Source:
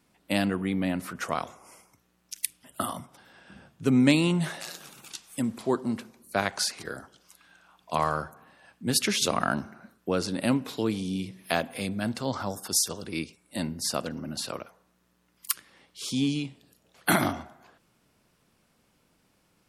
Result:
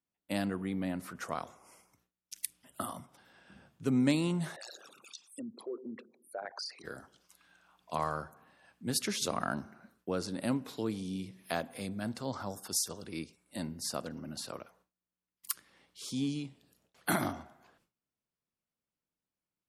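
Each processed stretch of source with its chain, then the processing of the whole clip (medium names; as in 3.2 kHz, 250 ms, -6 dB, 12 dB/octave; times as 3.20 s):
4.56–6.84 s: resonances exaggerated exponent 3 + high-pass 320 Hz + compression 2.5:1, threshold -30 dBFS
whole clip: gate with hold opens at -50 dBFS; dynamic bell 2.7 kHz, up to -5 dB, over -46 dBFS, Q 1.6; trim -7 dB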